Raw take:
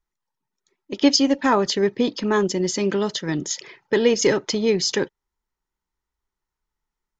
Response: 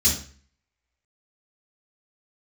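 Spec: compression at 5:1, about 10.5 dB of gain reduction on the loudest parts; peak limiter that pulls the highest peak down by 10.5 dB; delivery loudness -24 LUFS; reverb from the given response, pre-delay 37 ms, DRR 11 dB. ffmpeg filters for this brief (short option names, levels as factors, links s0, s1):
-filter_complex "[0:a]acompressor=threshold=0.0631:ratio=5,alimiter=limit=0.0668:level=0:latency=1,asplit=2[s0][s1];[1:a]atrim=start_sample=2205,adelay=37[s2];[s1][s2]afir=irnorm=-1:irlink=0,volume=0.075[s3];[s0][s3]amix=inputs=2:normalize=0,volume=2.24"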